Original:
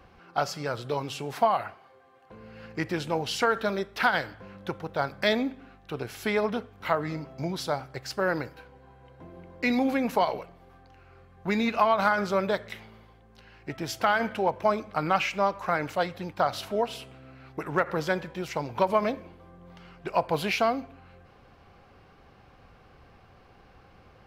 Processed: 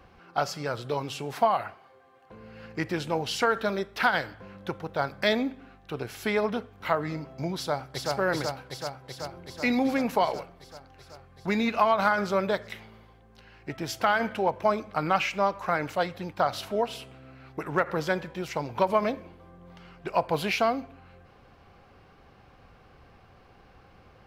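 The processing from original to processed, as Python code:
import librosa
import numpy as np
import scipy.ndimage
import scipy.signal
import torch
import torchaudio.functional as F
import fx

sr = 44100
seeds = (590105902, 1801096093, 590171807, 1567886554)

y = fx.echo_throw(x, sr, start_s=7.56, length_s=0.57, ms=380, feedback_pct=75, wet_db=-1.5)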